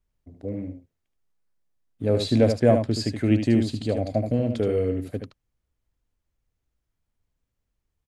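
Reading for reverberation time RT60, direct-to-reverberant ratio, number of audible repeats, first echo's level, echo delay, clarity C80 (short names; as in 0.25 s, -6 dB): none, none, 1, -7.0 dB, 75 ms, none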